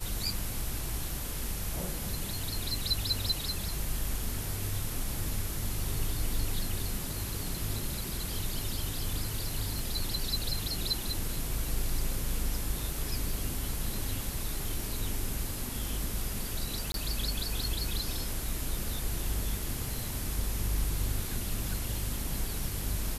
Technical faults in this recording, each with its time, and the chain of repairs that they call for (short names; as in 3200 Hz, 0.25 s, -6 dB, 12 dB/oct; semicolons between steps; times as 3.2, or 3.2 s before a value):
9.79 pop
16.92–16.94 gap 22 ms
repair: de-click; interpolate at 16.92, 22 ms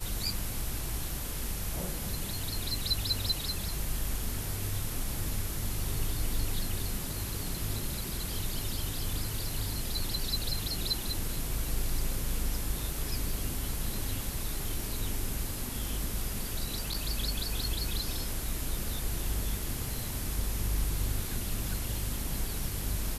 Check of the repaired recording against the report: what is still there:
none